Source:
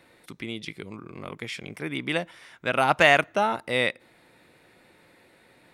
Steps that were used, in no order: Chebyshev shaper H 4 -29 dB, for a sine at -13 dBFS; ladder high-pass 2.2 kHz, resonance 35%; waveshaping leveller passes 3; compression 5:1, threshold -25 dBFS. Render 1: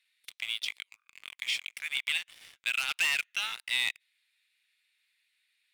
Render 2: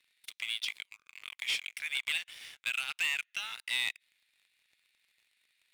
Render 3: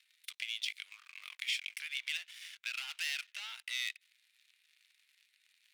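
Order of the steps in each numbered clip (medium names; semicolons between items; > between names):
Chebyshev shaper > ladder high-pass > waveshaping leveller > compression; compression > Chebyshev shaper > ladder high-pass > waveshaping leveller; Chebyshev shaper > waveshaping leveller > compression > ladder high-pass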